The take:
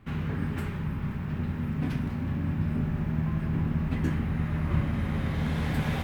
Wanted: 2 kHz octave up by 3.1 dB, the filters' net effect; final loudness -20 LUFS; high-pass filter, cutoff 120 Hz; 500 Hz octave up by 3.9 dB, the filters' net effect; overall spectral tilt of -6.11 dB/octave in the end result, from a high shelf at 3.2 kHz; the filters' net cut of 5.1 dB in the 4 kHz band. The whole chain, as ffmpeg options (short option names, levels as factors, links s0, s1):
-af "highpass=120,equalizer=f=500:t=o:g=5,equalizer=f=2000:t=o:g=7,highshelf=f=3200:g=-8,equalizer=f=4000:t=o:g=-5,volume=3.55"